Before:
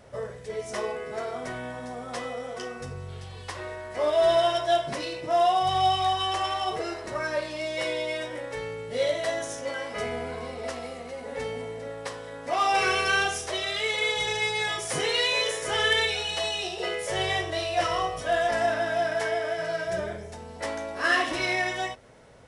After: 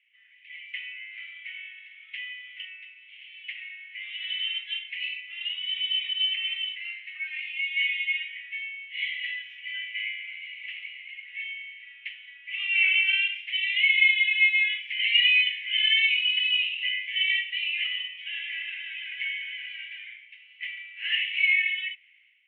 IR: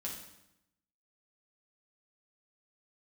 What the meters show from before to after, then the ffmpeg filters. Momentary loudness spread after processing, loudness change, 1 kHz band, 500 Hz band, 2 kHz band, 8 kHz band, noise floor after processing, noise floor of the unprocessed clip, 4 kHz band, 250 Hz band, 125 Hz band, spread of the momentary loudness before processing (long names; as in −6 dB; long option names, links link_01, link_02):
19 LU, +2.5 dB, below −40 dB, below −40 dB, +4.5 dB, below −40 dB, −53 dBFS, −41 dBFS, +4.5 dB, below −40 dB, below −40 dB, 14 LU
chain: -af "dynaudnorm=framelen=110:gausssize=7:maxgain=10dB,asuperpass=centerf=2500:order=8:qfactor=2.4"